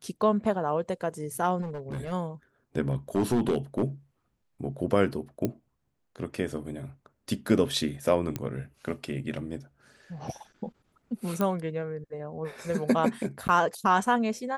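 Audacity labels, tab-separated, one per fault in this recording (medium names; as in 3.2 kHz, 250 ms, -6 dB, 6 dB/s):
1.610000	2.130000	clipped -30.5 dBFS
2.890000	3.840000	clipped -19.5 dBFS
5.450000	5.450000	pop -15 dBFS
8.360000	8.360000	pop -16 dBFS
11.410000	11.410000	pop -14 dBFS
13.480000	13.490000	dropout 8.9 ms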